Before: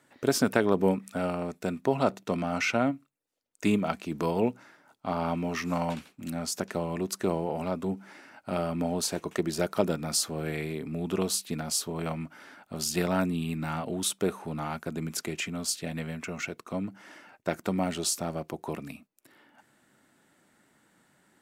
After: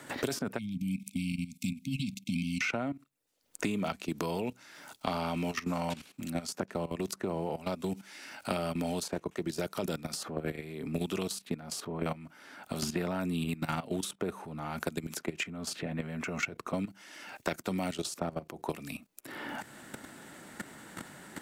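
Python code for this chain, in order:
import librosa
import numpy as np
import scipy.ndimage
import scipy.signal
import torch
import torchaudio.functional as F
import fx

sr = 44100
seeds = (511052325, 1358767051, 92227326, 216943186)

y = fx.level_steps(x, sr, step_db=16)
y = fx.brickwall_bandstop(y, sr, low_hz=280.0, high_hz=2100.0, at=(0.57, 2.6), fade=0.02)
y = fx.band_squash(y, sr, depth_pct=100)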